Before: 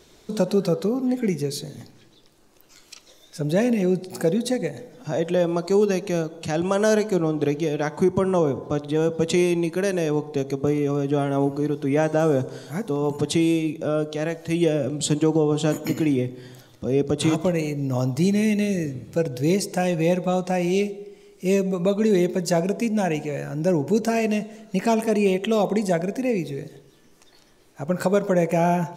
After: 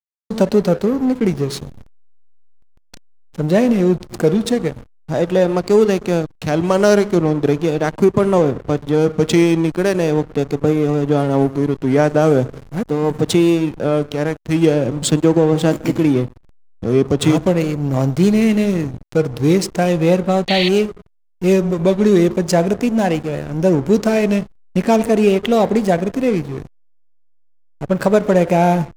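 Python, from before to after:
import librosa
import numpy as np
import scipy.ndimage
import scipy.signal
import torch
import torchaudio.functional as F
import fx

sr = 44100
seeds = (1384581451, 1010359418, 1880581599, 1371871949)

y = fx.backlash(x, sr, play_db=-27.0)
y = fx.vibrato(y, sr, rate_hz=0.4, depth_cents=76.0)
y = fx.spec_paint(y, sr, seeds[0], shape='noise', start_s=20.48, length_s=0.21, low_hz=1800.0, high_hz=4600.0, level_db=-27.0)
y = F.gain(torch.from_numpy(y), 7.0).numpy()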